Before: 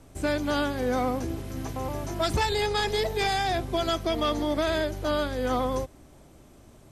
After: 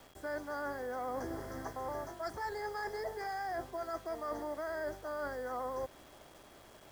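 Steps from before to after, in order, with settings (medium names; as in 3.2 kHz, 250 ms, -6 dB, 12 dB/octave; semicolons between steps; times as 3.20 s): Chebyshev band-stop 1.9–4.8 kHz, order 3; three-band isolator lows -15 dB, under 440 Hz, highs -14 dB, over 4 kHz; reverse; compression 20:1, threshold -38 dBFS, peak gain reduction 15 dB; reverse; bit crusher 10-bit; whistle 3.3 kHz -72 dBFS; trim +2.5 dB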